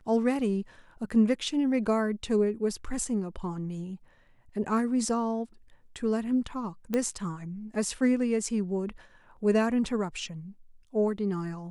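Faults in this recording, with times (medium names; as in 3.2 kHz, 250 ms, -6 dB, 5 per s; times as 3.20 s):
6.94 s: pop -15 dBFS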